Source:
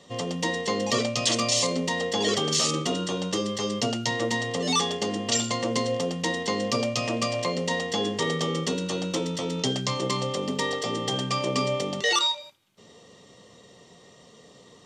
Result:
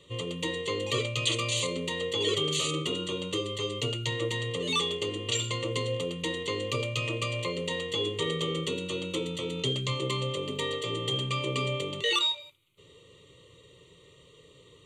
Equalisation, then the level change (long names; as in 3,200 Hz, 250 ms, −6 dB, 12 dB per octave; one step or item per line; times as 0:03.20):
parametric band 830 Hz −14.5 dB 2.2 octaves
high-shelf EQ 6,500 Hz −9 dB
phaser with its sweep stopped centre 1,100 Hz, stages 8
+6.5 dB